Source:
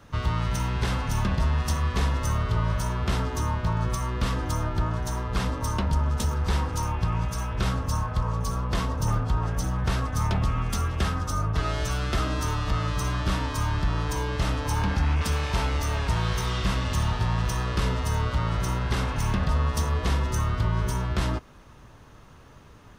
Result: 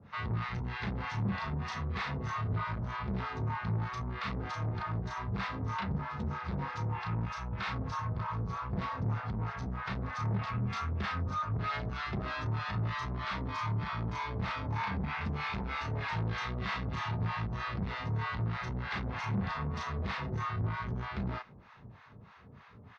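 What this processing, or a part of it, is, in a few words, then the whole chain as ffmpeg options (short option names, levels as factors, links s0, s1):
guitar amplifier with harmonic tremolo: -filter_complex "[0:a]asplit=2[s0][s1];[s1]adelay=35,volume=0.75[s2];[s0][s2]amix=inputs=2:normalize=0,acrossover=split=700[s3][s4];[s3]aeval=exprs='val(0)*(1-1/2+1/2*cos(2*PI*3.2*n/s))':c=same[s5];[s4]aeval=exprs='val(0)*(1-1/2-1/2*cos(2*PI*3.2*n/s))':c=same[s6];[s5][s6]amix=inputs=2:normalize=0,asoftclip=type=tanh:threshold=0.0398,highpass=92,equalizer=f=97:t=q:w=4:g=4,equalizer=f=200:t=q:w=4:g=5,equalizer=f=310:t=q:w=4:g=-9,equalizer=f=560:t=q:w=4:g=-5,equalizer=f=2100:t=q:w=4:g=4,equalizer=f=3100:t=q:w=4:g=-6,lowpass=f=4000:w=0.5412,lowpass=f=4000:w=1.3066"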